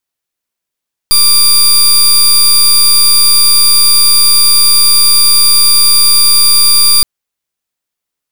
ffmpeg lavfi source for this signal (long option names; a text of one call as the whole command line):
ffmpeg -f lavfi -i "aevalsrc='0.501*(2*lt(mod(4770*t,1),0.25)-1)':duration=5.92:sample_rate=44100" out.wav